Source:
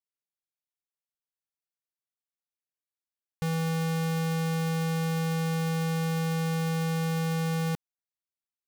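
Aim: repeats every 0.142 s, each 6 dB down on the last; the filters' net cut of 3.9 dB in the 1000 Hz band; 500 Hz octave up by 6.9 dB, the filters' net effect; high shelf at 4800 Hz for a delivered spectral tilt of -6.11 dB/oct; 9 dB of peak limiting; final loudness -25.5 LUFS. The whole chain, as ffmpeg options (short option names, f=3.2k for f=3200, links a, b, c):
-af "equalizer=f=500:t=o:g=8.5,equalizer=f=1k:t=o:g=-8.5,highshelf=f=4.8k:g=4,alimiter=level_in=7dB:limit=-24dB:level=0:latency=1,volume=-7dB,aecho=1:1:142|284|426|568|710|852:0.501|0.251|0.125|0.0626|0.0313|0.0157,volume=10dB"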